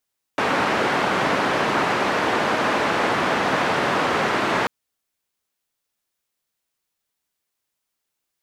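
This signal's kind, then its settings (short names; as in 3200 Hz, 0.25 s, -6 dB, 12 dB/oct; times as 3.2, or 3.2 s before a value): noise band 170–1400 Hz, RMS -21 dBFS 4.29 s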